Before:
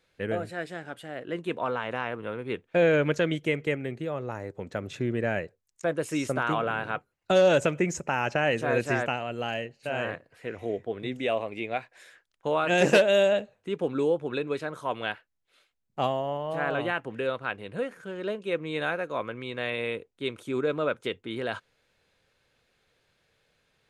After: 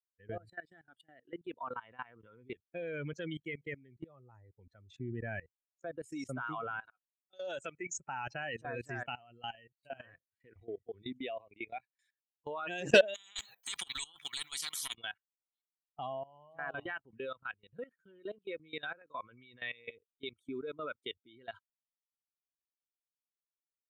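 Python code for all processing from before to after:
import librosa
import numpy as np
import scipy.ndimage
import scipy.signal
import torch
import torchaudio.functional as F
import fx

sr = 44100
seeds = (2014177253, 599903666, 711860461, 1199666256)

y = fx.chain(x, sr, fx.low_shelf(hz=270.0, db=-10.0),
    fx.auto_swell(attack_ms=285.0), at=(6.8, 8.0))
y = fx.chain(y, sr, fx.highpass(hz=230.0, slope=12),
    fx.over_compress(threshold_db=-29.0, ratio=-0.5),
    fx.spectral_comp(ratio=10.0), at=(13.14, 14.94))
y = fx.bin_expand(y, sr, power=2.0)
y = fx.high_shelf(y, sr, hz=2000.0, db=5.5)
y = fx.level_steps(y, sr, step_db=20)
y = F.gain(torch.from_numpy(y), 1.0).numpy()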